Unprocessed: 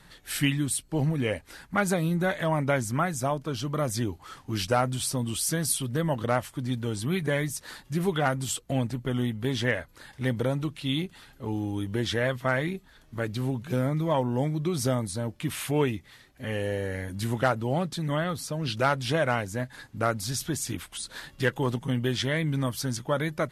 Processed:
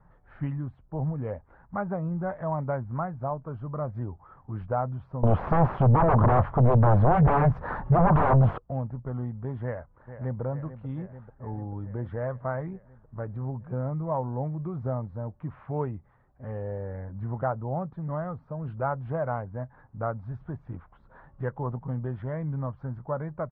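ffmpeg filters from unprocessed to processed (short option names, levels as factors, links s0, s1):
-filter_complex "[0:a]asettb=1/sr,asplit=3[s0][s1][s2];[s0]atrim=end=5.234[s3];[s1]atrim=start=5.23:end=8.58,asetpts=PTS-STARTPTS,afade=t=in:d=0.004:c=qsin,afade=t=out:st=3.346:d=0.004:c=qsin,aeval=exprs='0.251*sin(PI/2*7.94*val(0)/0.251)':c=same[s4];[s2]atrim=start=8.576[s5];[s3][s4]acrossfade=d=0.004:c1=hsin:c2=qsin[s6];[s6][s5]acrossfade=d=0.004:c1=qsin:c2=hsin,asplit=2[s7][s8];[s8]afade=t=in:st=9.63:d=0.01,afade=t=out:st=10.41:d=0.01,aecho=0:1:440|880|1320|1760|2200|2640|3080|3520|3960|4400|4840|5280:0.266073|0.199554|0.149666|0.112249|0.084187|0.0631403|0.0473552|0.0355164|0.0266373|0.019978|0.0149835|0.0112376[s9];[s7][s9]amix=inputs=2:normalize=0,lowpass=f=1100:w=0.5412,lowpass=f=1100:w=1.3066,equalizer=f=310:t=o:w=1.2:g=-10.5"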